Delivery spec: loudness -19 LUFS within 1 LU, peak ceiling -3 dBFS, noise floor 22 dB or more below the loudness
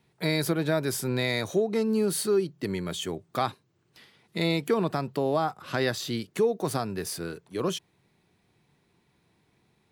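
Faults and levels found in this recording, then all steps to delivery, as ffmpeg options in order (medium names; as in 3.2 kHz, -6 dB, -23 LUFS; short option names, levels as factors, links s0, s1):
loudness -28.5 LUFS; peak level -13.0 dBFS; loudness target -19.0 LUFS
-> -af "volume=2.99"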